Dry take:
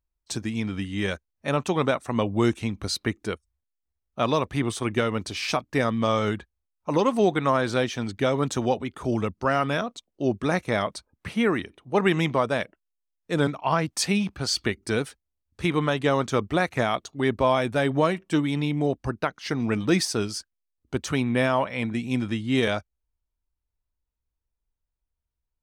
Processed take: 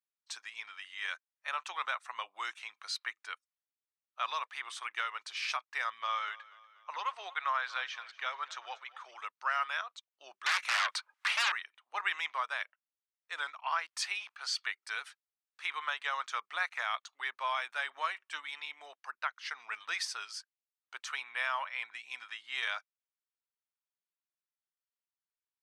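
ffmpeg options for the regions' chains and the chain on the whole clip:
ffmpeg -i in.wav -filter_complex "[0:a]asettb=1/sr,asplit=3[link_01][link_02][link_03];[link_01]atrim=end=6.014[link_04];[link_02]atrim=start=6.01:end=9.19,asetpts=PTS-STARTPTS,afade=type=in:duration=0.004:curve=qsin,afade=type=out:start_time=3.176:duration=0.004:curve=qsin,highpass=330,lowpass=5100,aecho=1:1:241|482|723|964:0.0944|0.051|0.0275|0.0149,atrim=end_sample=140238[link_05];[link_03]atrim=start=9.186[link_06];[link_04][link_05]acrossfade=duration=0.004:curve1=hsin:curve2=qsin[link_07];[link_07][link_06]acrossfade=duration=0.004:curve1=qsin:curve2=hsin,asettb=1/sr,asplit=3[link_08][link_09][link_10];[link_08]atrim=end=10.464[link_11];[link_09]atrim=start=10.46:end=11.52,asetpts=PTS-STARTPTS,afade=type=in:duration=0.004:curve=qsin,afade=type=out:start_time=1.056:duration=0.004:curve=qsin,acrossover=split=220|1000|3200[link_12][link_13][link_14][link_15];[link_12]acompressor=threshold=-38dB:ratio=3[link_16];[link_13]acompressor=threshold=-40dB:ratio=3[link_17];[link_14]acompressor=threshold=-34dB:ratio=3[link_18];[link_15]acompressor=threshold=-51dB:ratio=3[link_19];[link_16][link_17][link_18][link_19]amix=inputs=4:normalize=0,aeval=exprs='0.126*sin(PI/2*5.62*val(0)/0.126)':channel_layout=same[link_20];[link_10]atrim=start=11.516[link_21];[link_11][link_20]acrossfade=duration=0.004:curve1=hsin:curve2=qsin[link_22];[link_22][link_21]acrossfade=duration=0.004:curve1=qsin:curve2=hsin,highpass=frequency=1100:width=0.5412,highpass=frequency=1100:width=1.3066,aemphasis=mode=reproduction:type=50fm,volume=-3.5dB" out.wav

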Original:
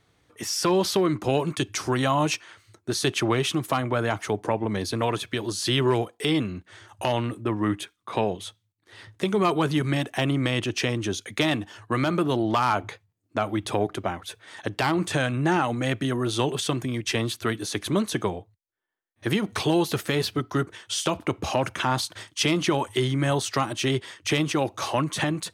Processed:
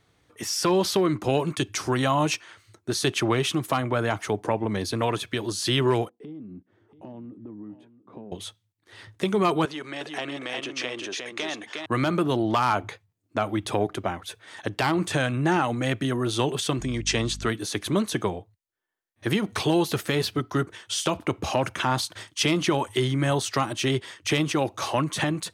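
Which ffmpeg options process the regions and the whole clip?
ffmpeg -i in.wav -filter_complex "[0:a]asettb=1/sr,asplit=3[link_01][link_02][link_03];[link_01]atrim=end=6.094[link_04];[link_02]atrim=start=6.09:end=8.32,asetpts=PTS-STARTPTS,afade=type=in:duration=0.004:curve=qsin,afade=type=out:start_time=2.226:duration=0.004:curve=qsin,bandpass=frequency=240:width_type=q:width=2,acompressor=threshold=-37dB:ratio=6:attack=3.2:release=140:knee=1:detection=peak,aecho=1:1:683:0.158,atrim=end_sample=98343[link_05];[link_03]atrim=start=8.316[link_06];[link_04][link_05]acrossfade=duration=0.004:curve1=hsin:curve2=qsin[link_07];[link_07][link_06]acrossfade=duration=0.004:curve1=qsin:curve2=hsin,asettb=1/sr,asplit=3[link_08][link_09][link_10];[link_08]atrim=end=9.654[link_11];[link_09]atrim=start=9.65:end=11.86,asetpts=PTS-STARTPTS,afade=type=in:duration=0.004:curve=qsin,afade=type=out:start_time=2.206:duration=0.004:curve=qsin,acompressor=threshold=-28dB:ratio=2:attack=3.2:release=140:knee=1:detection=peak,highpass=410,lowpass=7000,aecho=1:1:358:0.631,atrim=end_sample=97461[link_12];[link_10]atrim=start=11.856[link_13];[link_11][link_12]acrossfade=duration=0.004:curve1=hsin:curve2=qsin[link_14];[link_14][link_13]acrossfade=duration=0.004:curve1=qsin:curve2=hsin,asettb=1/sr,asplit=3[link_15][link_16][link_17];[link_15]atrim=end=16.794[link_18];[link_16]atrim=start=16.79:end=17.49,asetpts=PTS-STARTPTS,afade=type=in:duration=0.004:curve=qsin,afade=type=out:start_time=0.696:duration=0.004:curve=qsin,deesser=0.35,lowpass=frequency=7000:width_type=q:width=2.1,aeval=exprs='val(0)+0.0141*(sin(2*PI*50*n/s)+sin(2*PI*2*50*n/s)/2+sin(2*PI*3*50*n/s)/3+sin(2*PI*4*50*n/s)/4+sin(2*PI*5*50*n/s)/5)':channel_layout=same[link_19];[link_17]atrim=start=17.486[link_20];[link_18][link_19]acrossfade=duration=0.004:curve1=hsin:curve2=qsin[link_21];[link_21][link_20]acrossfade=duration=0.004:curve1=qsin:curve2=hsin" out.wav

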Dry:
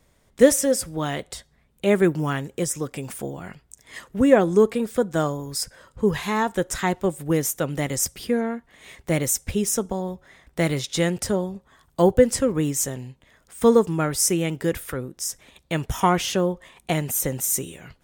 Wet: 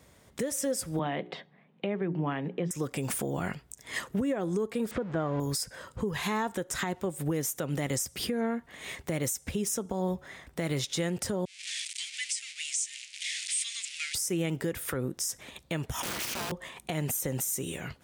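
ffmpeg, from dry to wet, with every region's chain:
ffmpeg -i in.wav -filter_complex "[0:a]asettb=1/sr,asplit=3[link_01][link_02][link_03];[link_01]atrim=end=0.994[link_04];[link_02]atrim=start=0.99:end=2.71,asetpts=PTS-STARTPTS,afade=type=in:duration=0.004:curve=qsin,afade=type=out:start_time=1.716:duration=0.004:curve=qsin,highpass=frequency=170:width=0.5412,highpass=frequency=170:width=1.3066,equalizer=frequency=170:width_type=q:width=4:gain=9,equalizer=frequency=760:width_type=q:width=4:gain=3,equalizer=frequency=1400:width_type=q:width=4:gain=-5,lowpass=frequency=3000:width=0.5412,lowpass=frequency=3000:width=1.3066,bandreject=frequency=60:width_type=h:width=6,bandreject=frequency=120:width_type=h:width=6,bandreject=frequency=180:width_type=h:width=6,bandreject=frequency=240:width_type=h:width=6,bandreject=frequency=300:width_type=h:width=6,bandreject=frequency=360:width_type=h:width=6,bandreject=frequency=420:width_type=h:width=6[link_05];[link_03]atrim=start=2.706[link_06];[link_04][link_05]acrossfade=duration=0.004:curve1=hsin:curve2=qsin[link_07];[link_07][link_06]acrossfade=duration=0.004:curve1=qsin:curve2=hsin,asettb=1/sr,asplit=3[link_08][link_09][link_10];[link_08]atrim=end=4.914[link_11];[link_09]atrim=start=4.91:end=5.4,asetpts=PTS-STARTPTS,afade=type=in:duration=0.004:curve=qsin,afade=type=out:start_time=0.486:duration=0.004:curve=qsin,aeval=exprs='val(0)+0.5*0.0251*sgn(val(0))':channel_layout=same,lowpass=2200[link_12];[link_10]atrim=start=5.396[link_13];[link_11][link_12]acrossfade=duration=0.004:curve1=hsin:curve2=qsin[link_14];[link_14][link_13]acrossfade=duration=0.004:curve1=qsin:curve2=hsin,asettb=1/sr,asplit=3[link_15][link_16][link_17];[link_15]atrim=end=11.454[link_18];[link_16]atrim=start=11.45:end=14.15,asetpts=PTS-STARTPTS,afade=type=in:duration=0.004:curve=qsin,afade=type=out:start_time=2.696:duration=0.004:curve=qsin,aeval=exprs='val(0)+0.5*0.0376*sgn(val(0))':channel_layout=same,asuperpass=centerf=4700:order=12:qfactor=0.65,agate=range=-33dB:threshold=-46dB:ratio=3:release=100:detection=peak[link_19];[link_17]atrim=start=14.146[link_20];[link_18][link_19]acrossfade=duration=0.004:curve1=hsin:curve2=qsin[link_21];[link_21][link_20]acrossfade=duration=0.004:curve1=qsin:curve2=hsin,asettb=1/sr,asplit=3[link_22][link_23][link_24];[link_22]atrim=end=16.024[link_25];[link_23]atrim=start=16.02:end=16.52,asetpts=PTS-STARTPTS,afade=type=in:duration=0.004:curve=qsin,afade=type=out:start_time=0.496:duration=0.004:curve=qsin,aeval=exprs='(mod(13.3*val(0)+1,2)-1)/13.3':channel_layout=same,afreqshift=-380,tremolo=f=240:d=0.889[link_26];[link_24]atrim=start=16.516[link_27];[link_25][link_26]acrossfade=duration=0.004:curve1=hsin:curve2=qsin[link_28];[link_28][link_27]acrossfade=duration=0.004:curve1=qsin:curve2=hsin,acompressor=threshold=-28dB:ratio=12,alimiter=level_in=2dB:limit=-24dB:level=0:latency=1:release=130,volume=-2dB,highpass=67,volume=4.5dB" out.wav

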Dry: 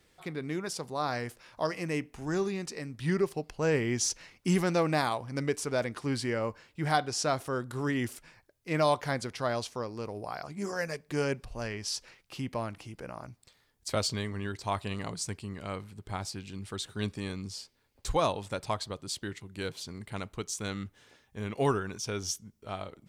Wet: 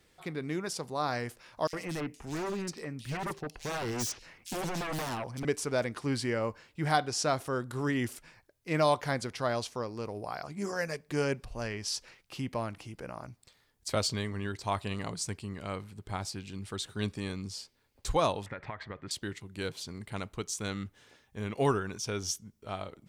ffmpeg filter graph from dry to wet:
ffmpeg -i in.wav -filter_complex "[0:a]asettb=1/sr,asplit=3[link_01][link_02][link_03];[link_01]atrim=end=1.674[link_04];[link_02]atrim=start=1.67:end=5.45,asetpts=PTS-STARTPTS,afade=type=in:duration=0.004:curve=qsin,afade=type=out:start_time=3.776:duration=0.004:curve=qsin,aeval=exprs='0.0355*(abs(mod(val(0)/0.0355+3,4)-2)-1)':channel_layout=same,acrossover=split=3000[link_05][link_06];[link_05]adelay=60[link_07];[link_07][link_06]amix=inputs=2:normalize=0,atrim=end_sample=166698[link_08];[link_03]atrim=start=5.446[link_09];[link_04][link_08]acrossfade=duration=0.004:curve1=hsin:curve2=qsin[link_10];[link_10][link_09]acrossfade=duration=0.004:curve1=qsin:curve2=hsin,asettb=1/sr,asplit=3[link_11][link_12][link_13];[link_11]atrim=end=18.464[link_14];[link_12]atrim=start=18.46:end=19.11,asetpts=PTS-STARTPTS,afade=type=in:duration=0.004:curve=qsin,afade=type=out:start_time=0.646:duration=0.004:curve=qsin,lowpass=frequency=1900:width_type=q:width=5.6,acompressor=threshold=-35dB:ratio=8:attack=3.2:release=140:knee=1:detection=peak[link_15];[link_13]atrim=start=19.106[link_16];[link_14][link_15]acrossfade=duration=0.004:curve1=hsin:curve2=qsin[link_17];[link_17][link_16]acrossfade=duration=0.004:curve1=qsin:curve2=hsin" out.wav

